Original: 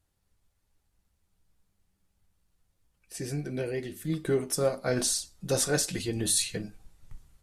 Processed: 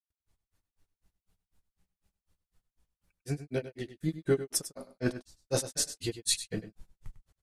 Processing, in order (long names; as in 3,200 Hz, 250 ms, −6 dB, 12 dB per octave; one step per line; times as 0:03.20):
granular cloud 132 ms, grains 4 per second, spray 106 ms, pitch spread up and down by 0 semitones
single-tap delay 99 ms −13 dB
level +2.5 dB